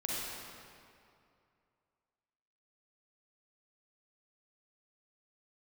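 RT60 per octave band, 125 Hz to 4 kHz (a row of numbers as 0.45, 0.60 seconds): 2.6, 2.5, 2.5, 2.5, 2.1, 1.7 seconds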